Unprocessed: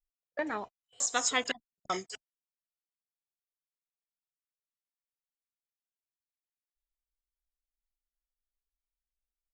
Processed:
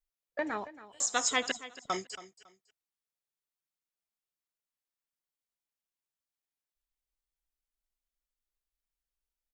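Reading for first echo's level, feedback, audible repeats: -16.0 dB, 24%, 2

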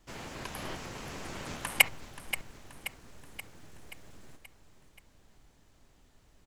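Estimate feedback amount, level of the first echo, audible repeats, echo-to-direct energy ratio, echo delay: 56%, -12.5 dB, 5, -11.0 dB, 0.529 s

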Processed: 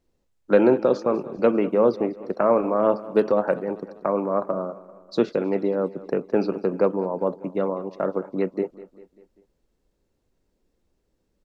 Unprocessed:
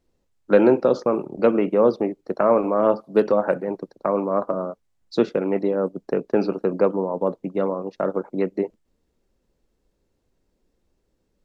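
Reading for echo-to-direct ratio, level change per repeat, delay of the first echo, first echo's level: -16.5 dB, -5.5 dB, 0.197 s, -18.0 dB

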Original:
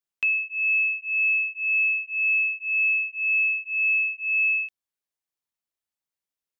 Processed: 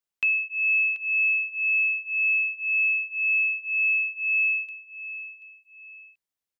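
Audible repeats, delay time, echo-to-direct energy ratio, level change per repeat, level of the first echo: 2, 0.734 s, -13.0 dB, -10.0 dB, -13.5 dB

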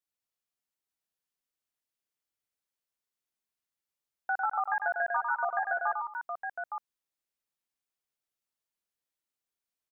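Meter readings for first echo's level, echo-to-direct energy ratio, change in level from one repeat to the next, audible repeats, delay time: -4.5 dB, -2.0 dB, no steady repeat, 3, 0.1 s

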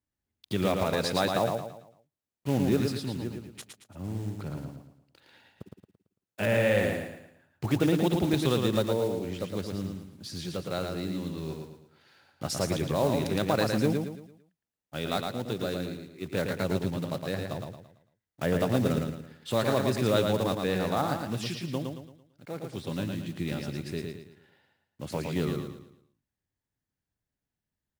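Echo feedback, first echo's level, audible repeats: 38%, -4.5 dB, 4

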